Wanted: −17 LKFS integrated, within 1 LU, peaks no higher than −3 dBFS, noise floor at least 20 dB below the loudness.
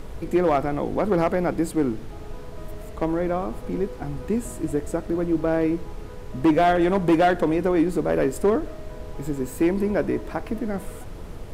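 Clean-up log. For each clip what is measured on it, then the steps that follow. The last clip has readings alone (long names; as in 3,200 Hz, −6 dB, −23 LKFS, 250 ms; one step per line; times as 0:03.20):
share of clipped samples 1.0%; peaks flattened at −13.0 dBFS; background noise floor −37 dBFS; target noise floor −44 dBFS; integrated loudness −23.5 LKFS; sample peak −13.0 dBFS; target loudness −17.0 LKFS
→ clipped peaks rebuilt −13 dBFS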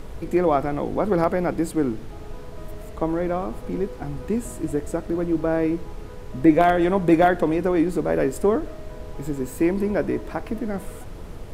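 share of clipped samples 0.0%; background noise floor −37 dBFS; target noise floor −43 dBFS
→ noise reduction from a noise print 6 dB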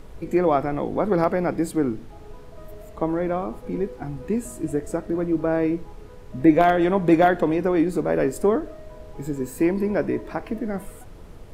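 background noise floor −42 dBFS; target noise floor −43 dBFS
→ noise reduction from a noise print 6 dB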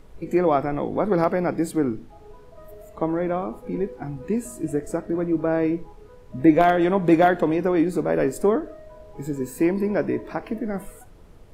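background noise floor −46 dBFS; integrated loudness −23.0 LKFS; sample peak −4.0 dBFS; target loudness −17.0 LKFS
→ level +6 dB
brickwall limiter −3 dBFS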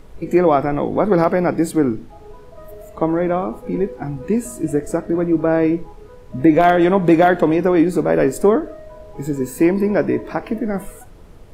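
integrated loudness −17.5 LKFS; sample peak −3.0 dBFS; background noise floor −40 dBFS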